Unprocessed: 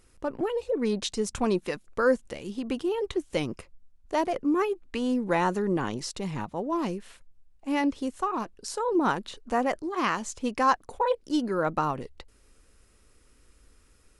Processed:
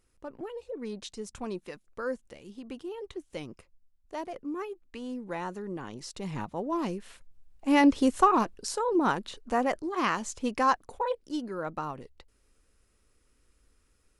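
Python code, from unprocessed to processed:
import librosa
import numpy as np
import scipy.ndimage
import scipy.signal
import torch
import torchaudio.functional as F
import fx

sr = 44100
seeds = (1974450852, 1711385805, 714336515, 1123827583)

y = fx.gain(x, sr, db=fx.line((5.86, -10.5), (6.35, -2.0), (6.91, -2.0), (8.21, 8.5), (8.88, -1.0), (10.57, -1.0), (11.51, -8.0)))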